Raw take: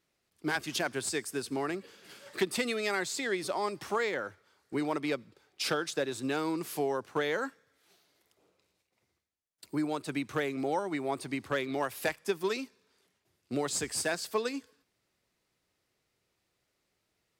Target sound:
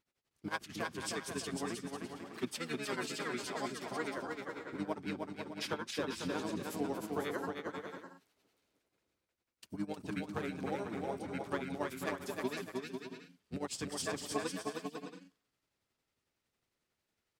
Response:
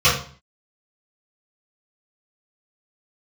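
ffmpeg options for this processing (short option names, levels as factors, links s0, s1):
-filter_complex "[0:a]asplit=2[s0][s1];[s1]asetrate=29433,aresample=44100,atempo=1.49831,volume=0.794[s2];[s0][s2]amix=inputs=2:normalize=0,tremolo=f=11:d=0.87,aecho=1:1:310|496|607.6|674.6|714.7:0.631|0.398|0.251|0.158|0.1,volume=0.473"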